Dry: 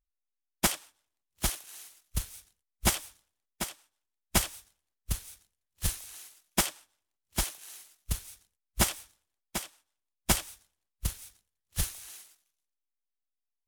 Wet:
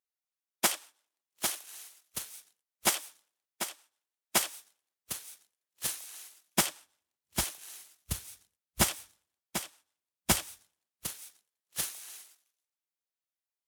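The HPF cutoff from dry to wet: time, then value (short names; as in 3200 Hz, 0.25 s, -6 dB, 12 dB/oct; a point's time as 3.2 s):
6.22 s 320 Hz
6.7 s 84 Hz
10.51 s 84 Hz
11.13 s 300 Hz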